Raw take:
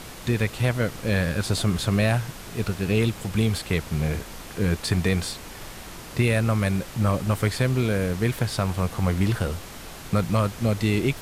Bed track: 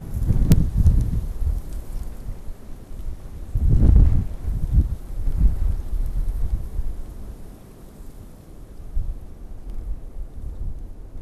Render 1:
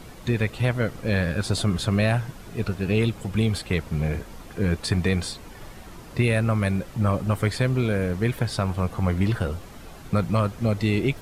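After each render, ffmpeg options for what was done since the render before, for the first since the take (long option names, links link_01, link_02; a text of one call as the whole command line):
ffmpeg -i in.wav -af "afftdn=noise_reduction=9:noise_floor=-40" out.wav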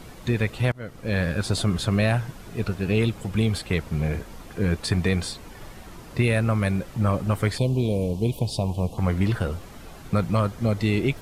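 ffmpeg -i in.wav -filter_complex "[0:a]asettb=1/sr,asplit=3[link_01][link_02][link_03];[link_01]atrim=end=7.584[link_04];[link_02]atrim=start=7.58:end=8.98,asetpts=PTS-STARTPTS,afade=type=in:duration=0.004:curve=qsin,afade=type=out:start_time=1.396:duration=0.004:curve=qsin,asuperstop=centerf=1600:order=8:qfactor=0.94[link_05];[link_03]atrim=start=8.976[link_06];[link_04][link_05]acrossfade=duration=0.004:curve1=hsin:curve2=qsin[link_07];[link_07][link_06]acrossfade=duration=0.004:curve1=qsin:curve2=hsin,asettb=1/sr,asplit=3[link_08][link_09][link_10];[link_08]atrim=end=10.364[link_11];[link_09]atrim=start=10.36:end=10.77,asetpts=PTS-STARTPTS,afade=type=in:duration=0.004:curve=qsin,afade=type=out:start_time=0.406:duration=0.004:curve=qsin,bandreject=frequency=2600:width=12[link_12];[link_10]atrim=start=10.766[link_13];[link_11][link_12]acrossfade=duration=0.004:curve1=hsin:curve2=qsin[link_14];[link_14][link_13]acrossfade=duration=0.004:curve1=qsin:curve2=hsin,asplit=2[link_15][link_16];[link_15]atrim=end=0.72,asetpts=PTS-STARTPTS,afade=type=out:start_time=0.716:duration=0.004:curve=hsin:silence=0.0668344[link_17];[link_16]atrim=start=0.72,asetpts=PTS-STARTPTS,afade=type=in:duration=0.51:silence=0.0668344[link_18];[link_17][link_18]concat=n=2:v=0:a=1" out.wav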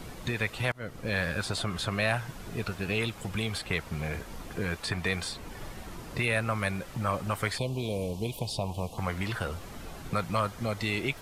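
ffmpeg -i in.wav -filter_complex "[0:a]acrossover=split=650|3400[link_01][link_02][link_03];[link_01]acompressor=threshold=-32dB:ratio=5[link_04];[link_03]alimiter=level_in=4dB:limit=-24dB:level=0:latency=1:release=271,volume=-4dB[link_05];[link_04][link_02][link_05]amix=inputs=3:normalize=0" out.wav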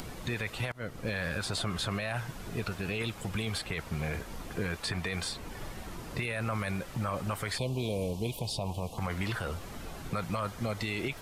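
ffmpeg -i in.wav -af "alimiter=limit=-23dB:level=0:latency=1:release=26,acompressor=mode=upward:threshold=-40dB:ratio=2.5" out.wav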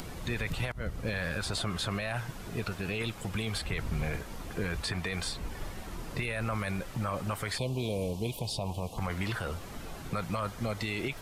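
ffmpeg -i in.wav -i bed.wav -filter_complex "[1:a]volume=-22.5dB[link_01];[0:a][link_01]amix=inputs=2:normalize=0" out.wav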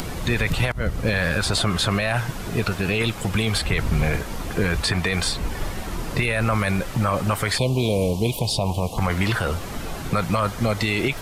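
ffmpeg -i in.wav -af "volume=11.5dB" out.wav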